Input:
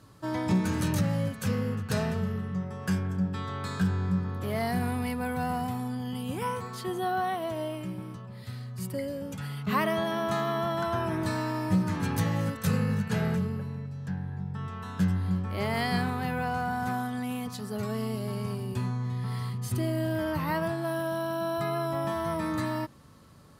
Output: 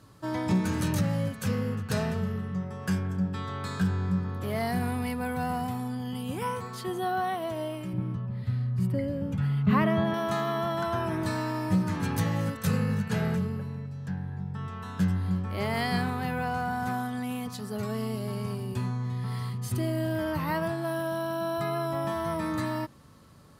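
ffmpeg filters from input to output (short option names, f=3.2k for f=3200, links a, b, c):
-filter_complex "[0:a]asettb=1/sr,asplit=3[a][b][c];[a]atrim=end=7.934[d];[b]atrim=start=7.93:end=10.14,asetpts=PTS-STARTPTS,afade=t=in:d=0.004:c=qsin,afade=t=out:st=2.206:d=0.004:c=qsin,bass=f=250:g=11,treble=f=4k:g=-12[e];[c]atrim=start=10.136[f];[d][e]acrossfade=d=0.004:c1=hsin:c2=qsin[g];[g][f]acrossfade=d=0.004:c1=qsin:c2=hsin"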